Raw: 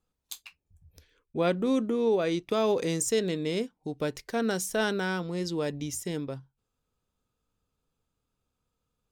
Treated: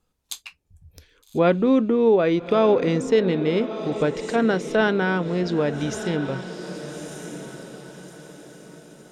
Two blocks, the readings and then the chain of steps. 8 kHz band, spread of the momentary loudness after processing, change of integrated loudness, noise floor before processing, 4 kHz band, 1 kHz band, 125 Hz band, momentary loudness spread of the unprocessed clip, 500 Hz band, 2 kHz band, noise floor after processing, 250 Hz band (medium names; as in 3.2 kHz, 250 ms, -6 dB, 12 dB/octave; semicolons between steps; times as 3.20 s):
-4.0 dB, 18 LU, +7.5 dB, -83 dBFS, +3.0 dB, +8.0 dB, +8.5 dB, 13 LU, +8.5 dB, +7.5 dB, -67 dBFS, +8.5 dB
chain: echo that smears into a reverb 1237 ms, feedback 40%, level -11.5 dB; low-pass that closes with the level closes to 2.6 kHz, closed at -26.5 dBFS; trim +8 dB